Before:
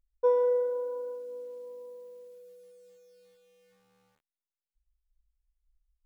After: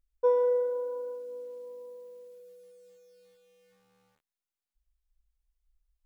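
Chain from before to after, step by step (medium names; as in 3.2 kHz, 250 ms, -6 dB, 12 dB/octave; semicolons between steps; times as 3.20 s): 1.97–2.40 s: high-pass 97 Hz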